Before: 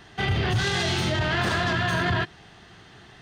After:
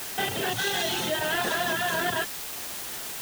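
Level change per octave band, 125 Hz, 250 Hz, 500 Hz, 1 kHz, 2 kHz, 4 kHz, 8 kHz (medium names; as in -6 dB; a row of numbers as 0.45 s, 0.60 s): -15.5 dB, -6.0 dB, -0.5 dB, -1.0 dB, -2.0 dB, -0.5 dB, +6.5 dB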